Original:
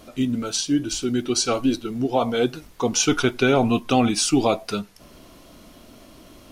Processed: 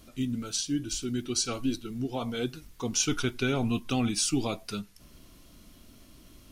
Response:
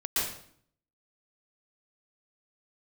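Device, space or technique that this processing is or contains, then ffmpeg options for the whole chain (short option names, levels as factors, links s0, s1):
smiley-face EQ: -af "lowshelf=f=120:g=7.5,equalizer=f=660:t=o:w=1.6:g=-7.5,highshelf=f=6000:g=5,volume=0.398"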